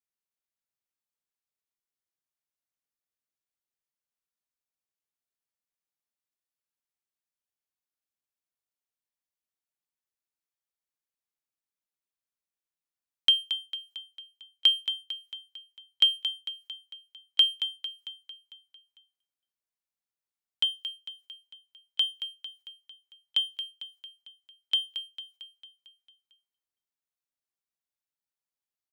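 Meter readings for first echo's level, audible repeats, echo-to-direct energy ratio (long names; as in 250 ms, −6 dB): −10.0 dB, 6, −8.5 dB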